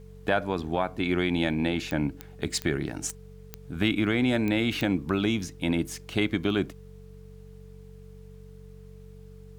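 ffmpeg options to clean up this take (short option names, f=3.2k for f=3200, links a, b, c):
-af "adeclick=t=4,bandreject=f=47:t=h:w=4,bandreject=f=94:t=h:w=4,bandreject=f=141:t=h:w=4,bandreject=f=188:t=h:w=4,bandreject=f=440:w=30,agate=range=-21dB:threshold=-38dB"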